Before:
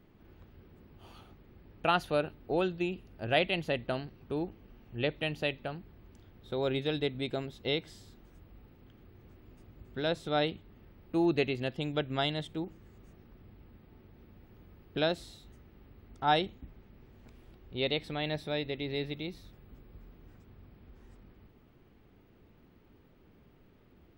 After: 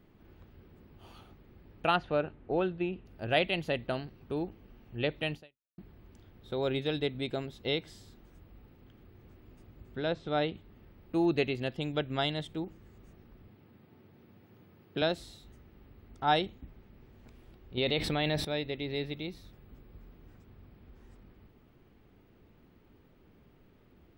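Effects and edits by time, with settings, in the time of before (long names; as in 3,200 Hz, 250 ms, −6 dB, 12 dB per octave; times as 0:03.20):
0:01.96–0:03.06: low-pass filter 2,500 Hz
0:05.35–0:05.78: fade out exponential
0:09.96–0:10.55: high-frequency loss of the air 160 metres
0:13.48–0:15.02: high-pass filter 100 Hz 24 dB per octave
0:17.77–0:18.45: envelope flattener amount 70%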